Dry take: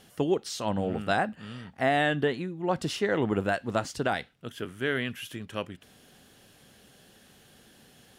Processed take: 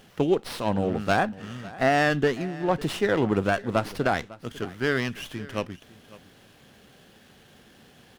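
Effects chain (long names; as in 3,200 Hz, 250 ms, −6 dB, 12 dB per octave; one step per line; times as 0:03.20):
single-tap delay 551 ms −19.5 dB
windowed peak hold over 5 samples
level +3.5 dB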